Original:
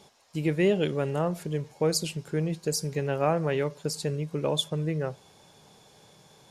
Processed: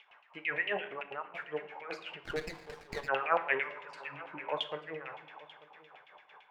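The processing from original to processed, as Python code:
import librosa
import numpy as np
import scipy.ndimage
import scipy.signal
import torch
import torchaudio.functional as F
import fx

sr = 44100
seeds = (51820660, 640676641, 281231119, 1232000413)

p1 = fx.transient(x, sr, attack_db=-2, sustain_db=5)
p2 = fx.band_shelf(p1, sr, hz=6400.0, db=-10.5, octaves=1.7)
p3 = fx.over_compress(p2, sr, threshold_db=-27.0, ratio=-1.0)
p4 = p2 + F.gain(torch.from_numpy(p3), -3.0).numpy()
p5 = fx.filter_lfo_highpass(p4, sr, shape='sine', hz=5.0, low_hz=600.0, high_hz=2700.0, q=0.74)
p6 = fx.level_steps(p5, sr, step_db=20, at=(0.77, 1.37))
p7 = fx.spec_repair(p6, sr, seeds[0], start_s=3.85, length_s=0.6, low_hz=370.0, high_hz=1700.0, source='before')
p8 = fx.filter_lfo_lowpass(p7, sr, shape='saw_down', hz=8.9, low_hz=770.0, high_hz=2900.0, q=4.6)
p9 = p8 + fx.echo_single(p8, sr, ms=889, db=-20.0, dry=0)
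p10 = fx.room_shoebox(p9, sr, seeds[1], volume_m3=280.0, walls='mixed', distance_m=0.39)
p11 = fx.running_max(p10, sr, window=9, at=(2.24, 3.07), fade=0.02)
y = F.gain(torch.from_numpy(p11), -4.5).numpy()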